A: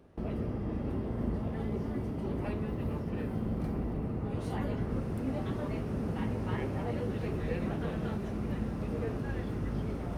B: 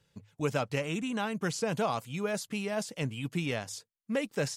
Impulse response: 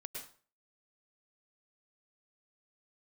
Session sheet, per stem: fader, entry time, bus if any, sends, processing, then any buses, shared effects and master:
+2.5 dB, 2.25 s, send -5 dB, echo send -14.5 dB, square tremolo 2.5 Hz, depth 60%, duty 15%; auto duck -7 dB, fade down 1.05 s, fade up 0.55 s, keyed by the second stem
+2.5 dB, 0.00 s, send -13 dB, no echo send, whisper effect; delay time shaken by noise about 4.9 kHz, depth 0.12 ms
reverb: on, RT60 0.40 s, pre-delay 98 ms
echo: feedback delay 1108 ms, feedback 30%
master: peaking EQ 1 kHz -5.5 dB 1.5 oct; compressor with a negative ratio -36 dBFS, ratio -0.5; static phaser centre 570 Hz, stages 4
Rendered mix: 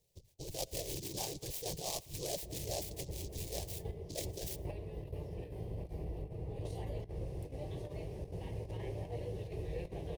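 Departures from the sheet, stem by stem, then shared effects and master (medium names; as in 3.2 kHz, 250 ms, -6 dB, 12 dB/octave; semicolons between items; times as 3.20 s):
stem B +2.5 dB -> -5.0 dB; reverb return -6.5 dB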